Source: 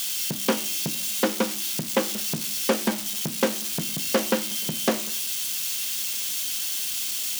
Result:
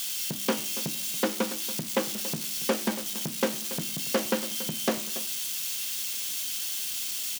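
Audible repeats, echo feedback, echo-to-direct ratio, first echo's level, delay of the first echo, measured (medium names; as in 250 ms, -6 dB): 1, no regular repeats, -14.5 dB, -14.5 dB, 282 ms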